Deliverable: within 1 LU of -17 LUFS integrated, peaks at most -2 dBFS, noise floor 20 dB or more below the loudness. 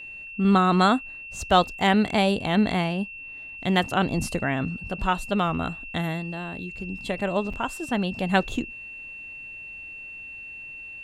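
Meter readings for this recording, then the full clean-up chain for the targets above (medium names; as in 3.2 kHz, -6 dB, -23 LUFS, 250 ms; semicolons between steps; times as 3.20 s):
dropouts 1; longest dropout 5.4 ms; steady tone 2.7 kHz; tone level -37 dBFS; loudness -25.0 LUFS; peak level -5.0 dBFS; loudness target -17.0 LUFS
-> interpolate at 7.53 s, 5.4 ms; band-stop 2.7 kHz, Q 30; trim +8 dB; peak limiter -2 dBFS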